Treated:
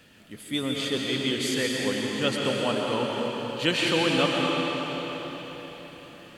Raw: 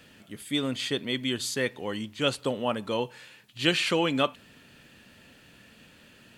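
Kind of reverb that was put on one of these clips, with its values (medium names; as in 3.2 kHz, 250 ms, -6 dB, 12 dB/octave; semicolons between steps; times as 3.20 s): algorithmic reverb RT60 4.8 s, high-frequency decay 0.9×, pre-delay 85 ms, DRR -2.5 dB; trim -1 dB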